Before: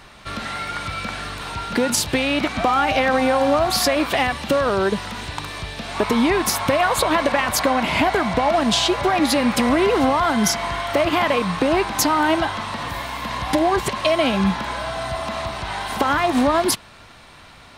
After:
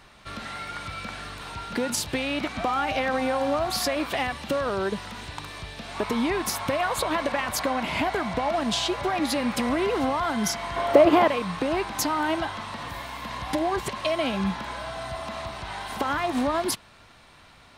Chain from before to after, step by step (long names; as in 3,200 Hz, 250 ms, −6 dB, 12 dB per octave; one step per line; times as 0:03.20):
0:10.76–0:11.28: parametric band 450 Hz +14 dB 2 octaves
level −7.5 dB